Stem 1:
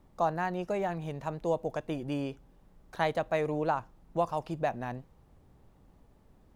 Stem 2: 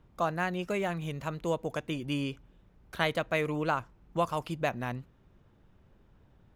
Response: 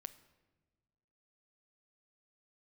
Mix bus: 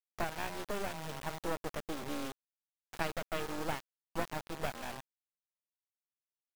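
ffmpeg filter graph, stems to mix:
-filter_complex "[0:a]volume=1dB,asplit=2[a][b];[b]volume=-21.5dB[c];[1:a]aeval=exprs='val(0)*sin(2*PI*800*n/s)':c=same,volume=-9.5dB,asplit=3[d][e][f];[e]volume=-8.5dB[g];[f]apad=whole_len=289114[h];[a][h]sidechaincompress=threshold=-46dB:ratio=3:attack=29:release=522[i];[2:a]atrim=start_sample=2205[j];[c][g]amix=inputs=2:normalize=0[k];[k][j]afir=irnorm=-1:irlink=0[l];[i][d][l]amix=inputs=3:normalize=0,lowpass=7.1k,acrusher=bits=4:dc=4:mix=0:aa=0.000001"

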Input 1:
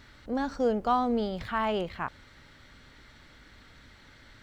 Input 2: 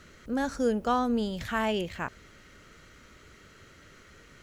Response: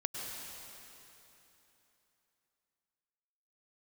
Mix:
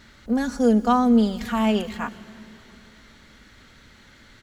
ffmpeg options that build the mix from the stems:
-filter_complex "[0:a]highshelf=f=5.6k:g=-10.5,volume=1.5dB,asplit=2[a][b];[1:a]equalizer=f=220:w=2.5:g=14.5,adelay=4,volume=-5dB,asplit=2[c][d];[d]volume=-12dB[e];[b]apad=whole_len=195359[f];[c][f]sidechaingate=range=-8dB:threshold=-41dB:ratio=16:detection=peak[g];[2:a]atrim=start_sample=2205[h];[e][h]afir=irnorm=-1:irlink=0[i];[a][g][i]amix=inputs=3:normalize=0,highshelf=f=3.3k:g=9"

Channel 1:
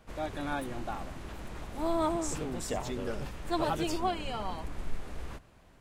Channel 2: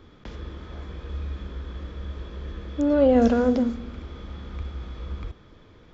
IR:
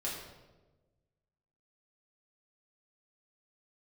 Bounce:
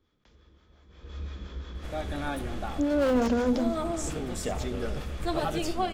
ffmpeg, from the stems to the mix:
-filter_complex "[0:a]bandreject=f=970:w=5.5,adelay=1750,volume=-4.5dB,asplit=2[a][b];[b]volume=-12.5dB[c];[1:a]asoftclip=type=hard:threshold=-16dB,acrossover=split=540[d][e];[d]aeval=exprs='val(0)*(1-0.5/2+0.5/2*cos(2*PI*5.7*n/s))':c=same[f];[e]aeval=exprs='val(0)*(1-0.5/2-0.5/2*cos(2*PI*5.7*n/s))':c=same[g];[f][g]amix=inputs=2:normalize=0,highshelf=f=3.9k:g=10.5,volume=-7dB,afade=t=in:st=0.89:d=0.28:silence=0.223872,asplit=2[h][i];[i]apad=whole_len=333284[j];[a][j]sidechaincompress=threshold=-33dB:ratio=8:attack=16:release=802[k];[2:a]atrim=start_sample=2205[l];[c][l]afir=irnorm=-1:irlink=0[m];[k][h][m]amix=inputs=3:normalize=0,dynaudnorm=f=230:g=9:m=5dB"

